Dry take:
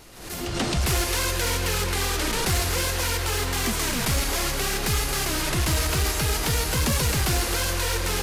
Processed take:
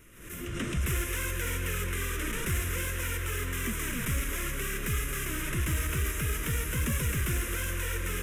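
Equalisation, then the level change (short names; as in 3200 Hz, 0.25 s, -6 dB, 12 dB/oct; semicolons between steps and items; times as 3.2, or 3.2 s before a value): fixed phaser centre 1900 Hz, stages 4; -5.0 dB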